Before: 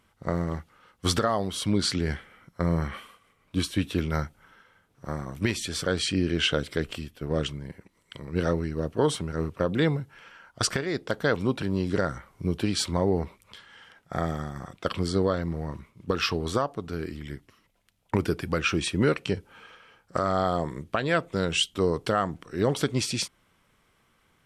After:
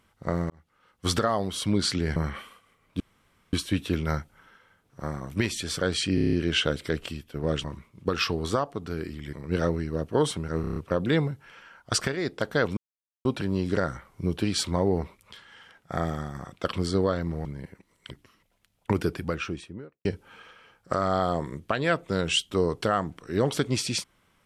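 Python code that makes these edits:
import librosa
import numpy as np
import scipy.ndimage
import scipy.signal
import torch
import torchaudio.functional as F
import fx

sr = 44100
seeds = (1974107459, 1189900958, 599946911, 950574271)

y = fx.studio_fade_out(x, sr, start_s=18.21, length_s=1.08)
y = fx.edit(y, sr, fx.fade_in_span(start_s=0.5, length_s=0.69),
    fx.cut(start_s=2.16, length_s=0.58),
    fx.insert_room_tone(at_s=3.58, length_s=0.53),
    fx.stutter(start_s=6.2, slice_s=0.03, count=7),
    fx.swap(start_s=7.51, length_s=0.66, other_s=15.66, other_length_s=1.69),
    fx.stutter(start_s=9.45, slice_s=0.03, count=6),
    fx.insert_silence(at_s=11.46, length_s=0.48), tone=tone)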